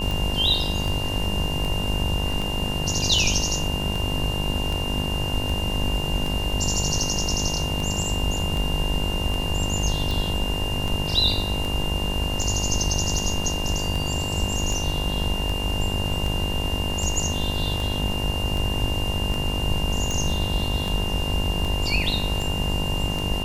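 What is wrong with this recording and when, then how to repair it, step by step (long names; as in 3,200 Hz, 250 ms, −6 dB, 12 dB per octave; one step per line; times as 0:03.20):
mains buzz 50 Hz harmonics 21 −30 dBFS
scratch tick 78 rpm
whistle 2,800 Hz −29 dBFS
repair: click removal
hum removal 50 Hz, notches 21
notch filter 2,800 Hz, Q 30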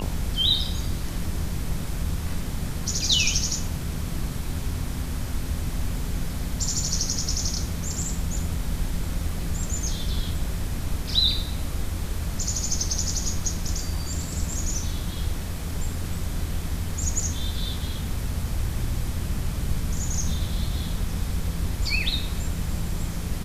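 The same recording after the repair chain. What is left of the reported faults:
none of them is left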